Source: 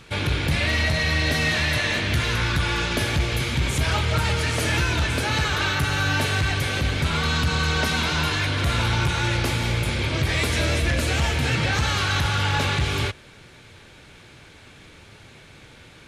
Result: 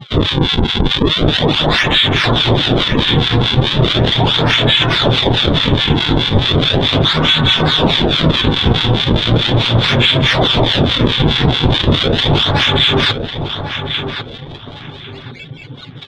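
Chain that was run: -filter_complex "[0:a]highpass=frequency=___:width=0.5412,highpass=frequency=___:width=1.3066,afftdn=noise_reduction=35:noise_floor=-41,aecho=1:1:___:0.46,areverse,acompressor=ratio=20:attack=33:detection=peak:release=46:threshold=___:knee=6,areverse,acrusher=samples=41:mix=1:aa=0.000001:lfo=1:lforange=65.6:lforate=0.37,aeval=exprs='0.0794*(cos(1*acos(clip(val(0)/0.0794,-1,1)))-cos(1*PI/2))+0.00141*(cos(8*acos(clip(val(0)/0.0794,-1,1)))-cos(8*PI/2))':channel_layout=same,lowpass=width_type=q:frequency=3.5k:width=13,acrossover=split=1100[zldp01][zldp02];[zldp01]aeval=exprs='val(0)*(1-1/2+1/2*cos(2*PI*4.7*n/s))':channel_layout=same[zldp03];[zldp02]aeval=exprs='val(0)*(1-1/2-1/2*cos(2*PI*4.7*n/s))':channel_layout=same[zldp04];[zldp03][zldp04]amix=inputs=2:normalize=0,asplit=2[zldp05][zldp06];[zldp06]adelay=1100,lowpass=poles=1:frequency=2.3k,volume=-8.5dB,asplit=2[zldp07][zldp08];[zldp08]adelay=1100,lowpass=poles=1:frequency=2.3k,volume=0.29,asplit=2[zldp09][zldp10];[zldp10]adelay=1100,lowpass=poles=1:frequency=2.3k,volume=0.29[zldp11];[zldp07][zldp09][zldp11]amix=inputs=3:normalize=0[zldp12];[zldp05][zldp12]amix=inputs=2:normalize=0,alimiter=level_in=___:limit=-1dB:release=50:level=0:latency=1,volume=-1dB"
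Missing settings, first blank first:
110, 110, 7.5, -35dB, 25dB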